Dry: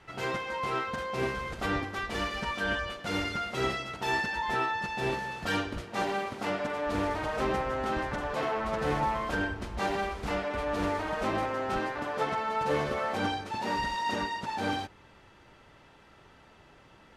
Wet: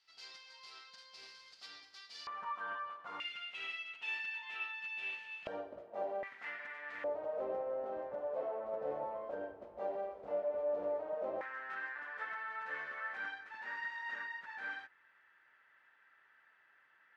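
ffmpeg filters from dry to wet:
-af "asetnsamples=n=441:p=0,asendcmd='2.27 bandpass f 1100;3.2 bandpass f 2700;5.47 bandpass f 600;6.23 bandpass f 1900;7.04 bandpass f 570;11.41 bandpass f 1700',bandpass=f=4.7k:t=q:w=5.6:csg=0"

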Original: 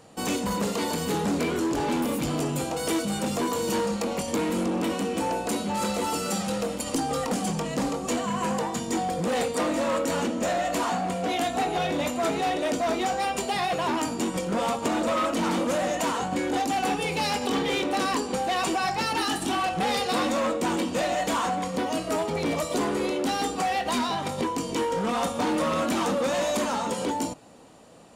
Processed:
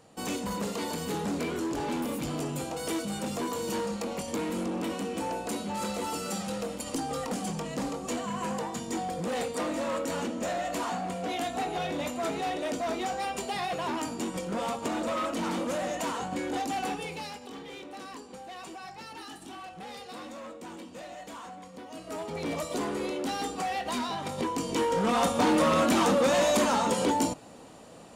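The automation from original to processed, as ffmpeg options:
-af "volume=13.5dB,afade=t=out:st=16.79:d=0.61:silence=0.266073,afade=t=in:st=21.88:d=0.65:silence=0.266073,afade=t=in:st=24.18:d=1.19:silence=0.421697"

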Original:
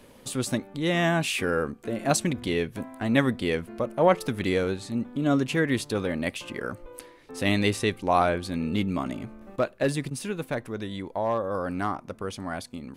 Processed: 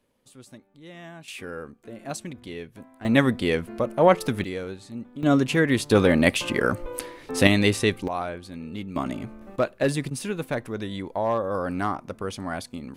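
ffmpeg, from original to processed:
-af "asetnsamples=n=441:p=0,asendcmd='1.28 volume volume -10dB;3.05 volume volume 3dB;4.44 volume volume -7dB;5.23 volume volume 3.5dB;5.91 volume volume 10dB;7.47 volume volume 3.5dB;8.08 volume volume -8dB;8.96 volume volume 2dB',volume=-19dB"

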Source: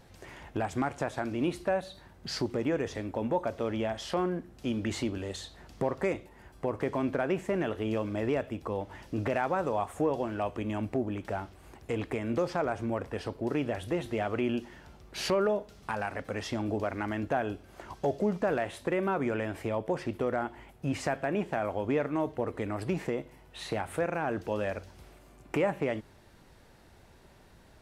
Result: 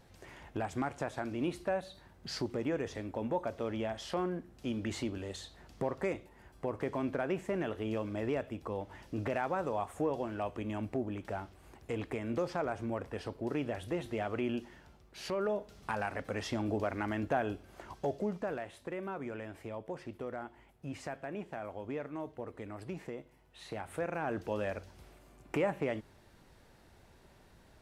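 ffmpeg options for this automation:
-af "volume=12dB,afade=t=out:st=14.68:d=0.52:silence=0.446684,afade=t=in:st=15.2:d=0.57:silence=0.334965,afade=t=out:st=17.55:d=1.12:silence=0.375837,afade=t=in:st=23.6:d=0.74:silence=0.446684"

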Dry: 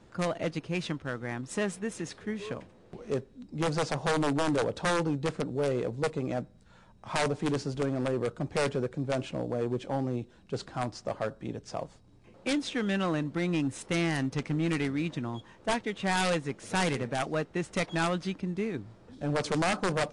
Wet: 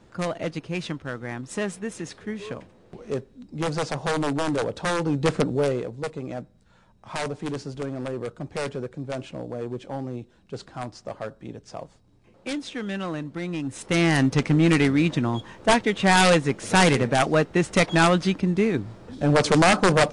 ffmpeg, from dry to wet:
-af "volume=22dB,afade=t=in:st=5:d=0.37:silence=0.398107,afade=t=out:st=5.37:d=0.5:silence=0.266073,afade=t=in:st=13.63:d=0.59:silence=0.266073"

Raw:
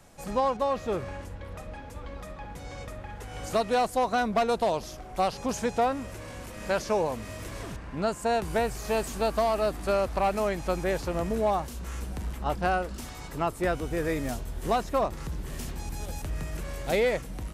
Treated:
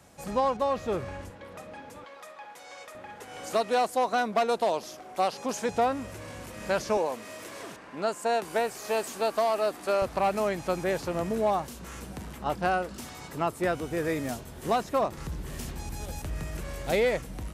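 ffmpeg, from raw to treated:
-af "asetnsamples=n=441:p=0,asendcmd='1.3 highpass f 190;2.04 highpass f 640;2.95 highpass f 250;5.69 highpass f 74;6.97 highpass f 300;10.02 highpass f 110;15.17 highpass f 43',highpass=58"

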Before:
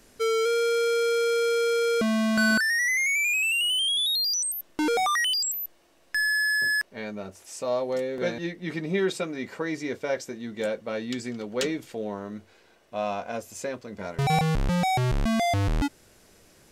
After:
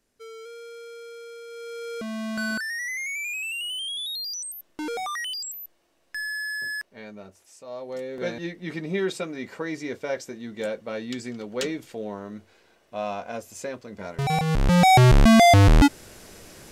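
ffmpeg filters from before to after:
-af "volume=17.5dB,afade=t=in:st=1.47:d=0.84:silence=0.281838,afade=t=out:st=7.24:d=0.4:silence=0.446684,afade=t=in:st=7.64:d=0.69:silence=0.237137,afade=t=in:st=14.45:d=0.55:silence=0.266073"

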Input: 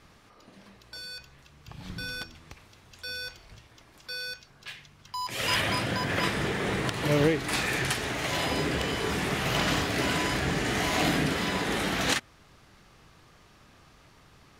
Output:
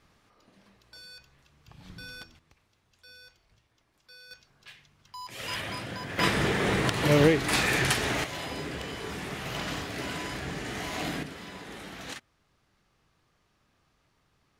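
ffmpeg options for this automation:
-af "asetnsamples=n=441:p=0,asendcmd='2.39 volume volume -15.5dB;4.31 volume volume -8dB;6.19 volume volume 3dB;8.24 volume volume -7.5dB;11.23 volume volume -14dB',volume=-7.5dB"

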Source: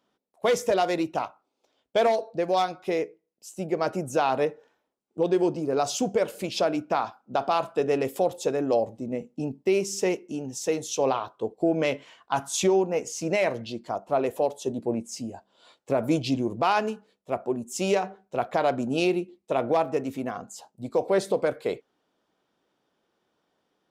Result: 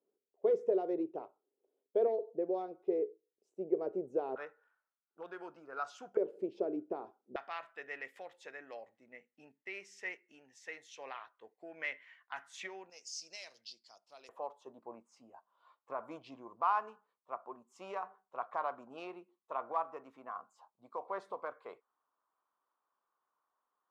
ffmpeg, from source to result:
-af "asetnsamples=n=441:p=0,asendcmd='4.36 bandpass f 1400;6.17 bandpass f 390;7.36 bandpass f 1900;12.9 bandpass f 5000;14.29 bandpass f 1100',bandpass=f=410:t=q:w=5.8:csg=0"

